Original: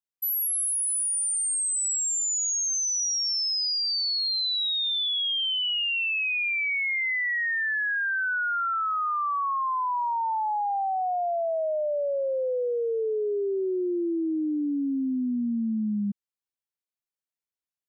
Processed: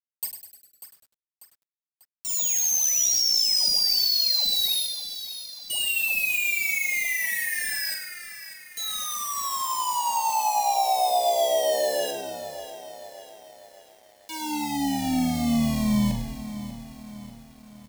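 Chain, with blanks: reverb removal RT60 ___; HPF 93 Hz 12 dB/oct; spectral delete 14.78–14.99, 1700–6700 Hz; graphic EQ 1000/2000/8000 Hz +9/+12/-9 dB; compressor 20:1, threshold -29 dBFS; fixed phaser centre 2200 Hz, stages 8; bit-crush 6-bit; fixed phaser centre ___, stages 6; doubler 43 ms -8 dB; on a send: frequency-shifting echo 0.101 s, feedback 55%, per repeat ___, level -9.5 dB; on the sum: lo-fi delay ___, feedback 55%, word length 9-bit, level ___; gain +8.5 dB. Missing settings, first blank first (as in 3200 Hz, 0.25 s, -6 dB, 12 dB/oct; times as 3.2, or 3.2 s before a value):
0.53 s, 370 Hz, -85 Hz, 0.593 s, -12.5 dB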